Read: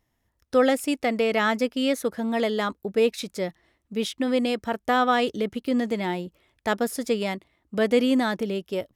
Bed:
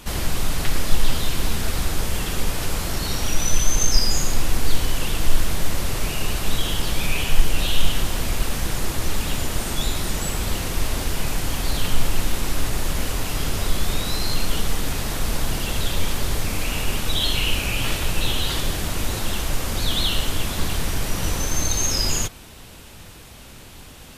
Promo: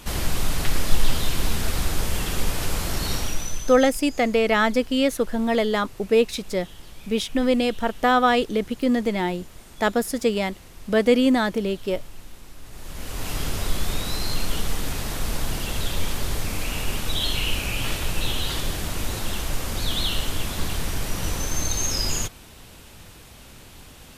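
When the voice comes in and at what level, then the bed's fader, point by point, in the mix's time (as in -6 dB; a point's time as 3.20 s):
3.15 s, +3.0 dB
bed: 3.15 s -1 dB
3.95 s -20.5 dB
12.61 s -20.5 dB
13.29 s -3 dB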